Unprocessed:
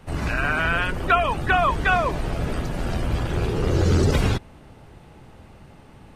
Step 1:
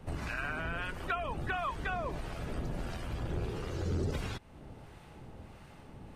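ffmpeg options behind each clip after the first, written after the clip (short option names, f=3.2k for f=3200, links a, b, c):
-filter_complex "[0:a]acompressor=threshold=-33dB:ratio=2.5,acrossover=split=810[a][b];[a]aeval=exprs='val(0)*(1-0.5/2+0.5/2*cos(2*PI*1.5*n/s))':c=same[c];[b]aeval=exprs='val(0)*(1-0.5/2-0.5/2*cos(2*PI*1.5*n/s))':c=same[d];[c][d]amix=inputs=2:normalize=0,volume=-2dB"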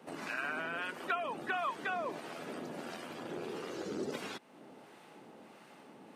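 -af "highpass=f=220:w=0.5412,highpass=f=220:w=1.3066"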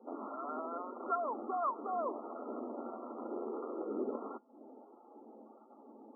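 -af "afftdn=nr=14:nf=-53,afftfilt=real='re*between(b*sr/4096,210,1400)':imag='im*between(b*sr/4096,210,1400)':win_size=4096:overlap=0.75,volume=1.5dB"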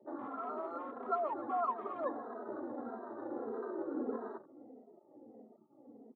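-filter_complex "[0:a]aecho=1:1:144|260:0.168|0.133,afwtdn=0.00355,asplit=2[a][b];[b]adelay=2.8,afreqshift=-1.6[c];[a][c]amix=inputs=2:normalize=1,volume=3dB"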